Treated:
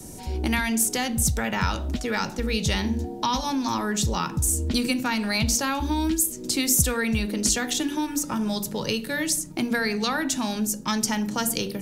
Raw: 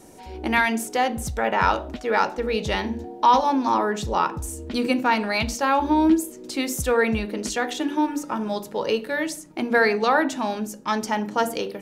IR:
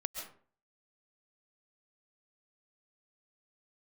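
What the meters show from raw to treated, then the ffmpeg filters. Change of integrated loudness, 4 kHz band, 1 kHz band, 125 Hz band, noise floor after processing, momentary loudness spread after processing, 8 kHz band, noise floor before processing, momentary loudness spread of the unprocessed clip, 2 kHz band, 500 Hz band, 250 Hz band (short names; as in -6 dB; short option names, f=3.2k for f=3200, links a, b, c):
-1.5 dB, +4.0 dB, -8.0 dB, +6.0 dB, -37 dBFS, 5 LU, +10.5 dB, -42 dBFS, 9 LU, -3.5 dB, -7.5 dB, -1.0 dB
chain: -filter_complex "[0:a]acrossover=split=84|260|1300[a][b][c][d];[a]acompressor=threshold=-46dB:ratio=4[e];[b]acompressor=threshold=-38dB:ratio=4[f];[c]acompressor=threshold=-34dB:ratio=4[g];[d]acompressor=threshold=-27dB:ratio=4[h];[e][f][g][h]amix=inputs=4:normalize=0,bass=f=250:g=14,treble=f=4k:g=12"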